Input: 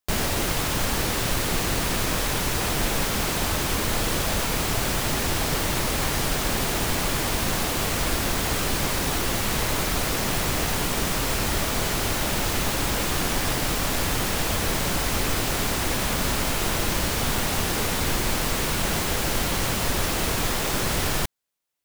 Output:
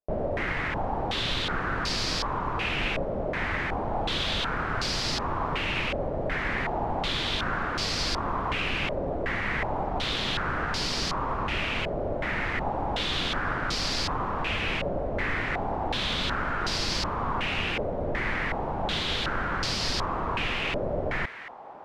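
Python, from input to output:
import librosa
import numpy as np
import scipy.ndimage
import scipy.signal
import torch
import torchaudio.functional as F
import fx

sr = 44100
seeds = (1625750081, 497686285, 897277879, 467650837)

y = fx.echo_thinned(x, sr, ms=1006, feedback_pct=72, hz=650.0, wet_db=-12.5)
y = fx.filter_held_lowpass(y, sr, hz=2.7, low_hz=600.0, high_hz=4800.0)
y = F.gain(torch.from_numpy(y), -6.0).numpy()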